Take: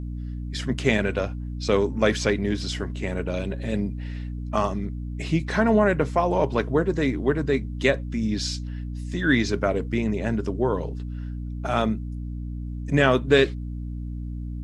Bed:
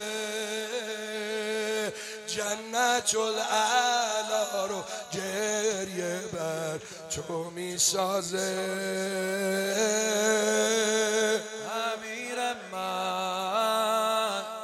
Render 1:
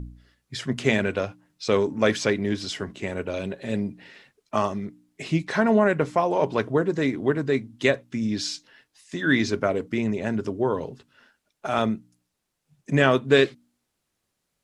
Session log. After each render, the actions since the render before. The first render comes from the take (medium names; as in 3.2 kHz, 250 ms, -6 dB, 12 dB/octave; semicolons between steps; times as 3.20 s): de-hum 60 Hz, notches 5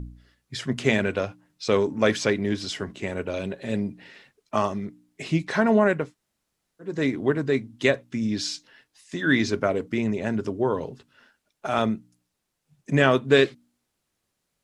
6.03–6.91 s: room tone, crossfade 0.24 s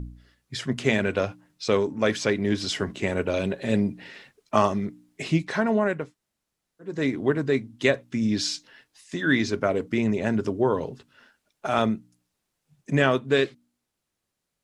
gain riding within 4 dB 0.5 s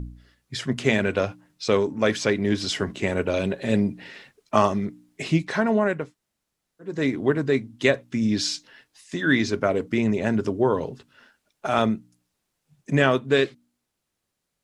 trim +1.5 dB